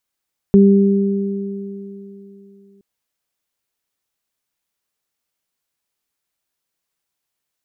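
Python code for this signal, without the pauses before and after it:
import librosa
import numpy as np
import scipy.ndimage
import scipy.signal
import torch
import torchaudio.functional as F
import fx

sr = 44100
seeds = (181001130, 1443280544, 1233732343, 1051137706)

y = fx.additive(sr, length_s=2.27, hz=198.0, level_db=-6.0, upper_db=(-5,), decay_s=3.13, upper_decays_s=(3.33,))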